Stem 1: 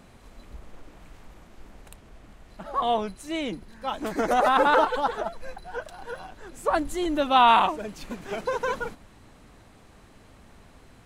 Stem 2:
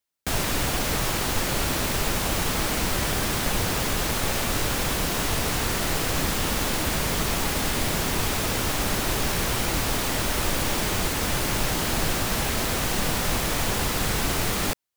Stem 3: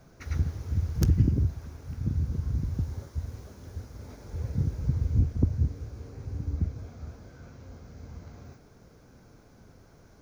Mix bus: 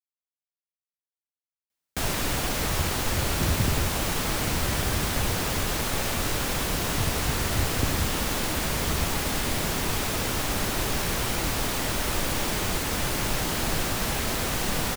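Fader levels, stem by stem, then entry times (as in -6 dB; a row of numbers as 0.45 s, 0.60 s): mute, -2.0 dB, -4.0 dB; mute, 1.70 s, 2.40 s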